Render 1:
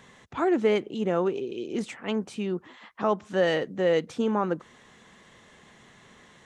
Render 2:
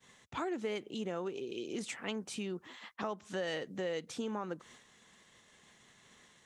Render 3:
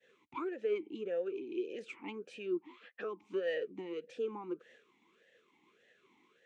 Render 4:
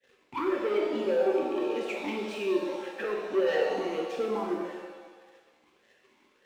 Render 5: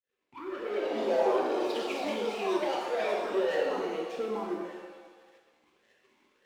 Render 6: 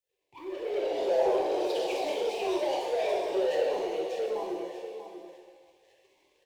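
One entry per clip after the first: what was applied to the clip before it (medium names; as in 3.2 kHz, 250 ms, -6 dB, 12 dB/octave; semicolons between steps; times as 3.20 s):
expander -47 dBFS; compression 3:1, threshold -34 dBFS, peak gain reduction 12 dB; treble shelf 2.9 kHz +11 dB; trim -4 dB
talking filter e-u 1.7 Hz; trim +8.5 dB
waveshaping leveller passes 2; pitch-shifted reverb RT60 1.3 s, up +7 st, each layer -8 dB, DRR -0.5 dB; trim +1 dB
fade-in on the opening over 1.08 s; ever faster or slower copies 252 ms, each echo +4 st, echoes 3; trim -3 dB
static phaser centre 560 Hz, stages 4; delay 639 ms -11 dB; in parallel at -4.5 dB: saturation -32 dBFS, distortion -9 dB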